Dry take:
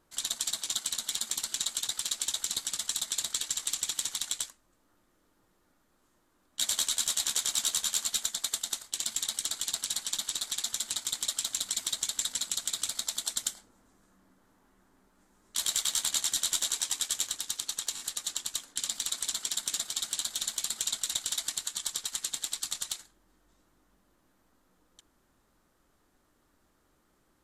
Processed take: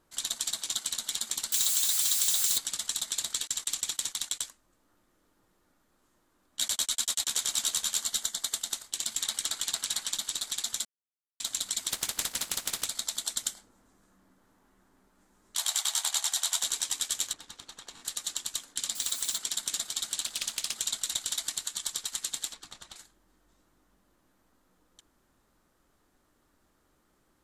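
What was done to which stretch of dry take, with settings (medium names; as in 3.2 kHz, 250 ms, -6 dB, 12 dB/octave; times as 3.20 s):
1.52–2.58 s: zero-crossing glitches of -23 dBFS
3.47–4.46 s: gate -43 dBFS, range -25 dB
6.68–7.30 s: gate -34 dBFS, range -30 dB
7.99–8.53 s: band-stop 2.5 kHz, Q 7.5
9.20–10.13 s: peaking EQ 1.5 kHz +4 dB 2.4 oct
10.85–11.40 s: mute
11.90–12.84 s: spectral contrast reduction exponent 0.42
15.57–16.63 s: resonant low shelf 550 Hz -11 dB, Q 3
17.33–18.05 s: low-pass 1.2 kHz 6 dB/octave
18.95–19.38 s: zero-crossing glitches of -35 dBFS
20.21–20.75 s: loudspeaker Doppler distortion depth 0.44 ms
22.53–22.96 s: low-pass 1.1 kHz 6 dB/octave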